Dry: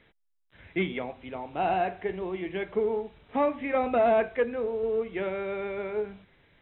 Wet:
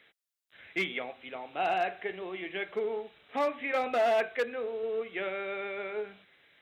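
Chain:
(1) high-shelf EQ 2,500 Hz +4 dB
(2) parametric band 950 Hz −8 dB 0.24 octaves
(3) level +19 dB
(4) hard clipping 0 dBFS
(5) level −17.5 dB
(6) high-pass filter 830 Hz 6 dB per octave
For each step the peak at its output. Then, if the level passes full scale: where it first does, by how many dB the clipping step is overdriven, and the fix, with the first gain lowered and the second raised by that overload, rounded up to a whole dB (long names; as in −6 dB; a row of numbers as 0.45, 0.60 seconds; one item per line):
−13.5, −14.0, +5.0, 0.0, −17.5, −17.0 dBFS
step 3, 5.0 dB
step 3 +14 dB, step 5 −12.5 dB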